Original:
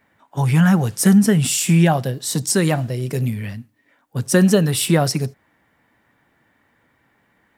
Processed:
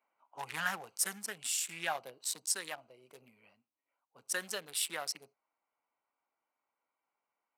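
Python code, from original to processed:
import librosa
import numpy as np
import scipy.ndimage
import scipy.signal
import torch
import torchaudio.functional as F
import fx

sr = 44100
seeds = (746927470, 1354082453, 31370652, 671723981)

y = fx.wiener(x, sr, points=25)
y = scipy.signal.sosfilt(scipy.signal.butter(2, 1200.0, 'highpass', fs=sr, output='sos'), y)
y = fx.rider(y, sr, range_db=10, speed_s=0.5)
y = y * 10.0 ** (-9.0 / 20.0)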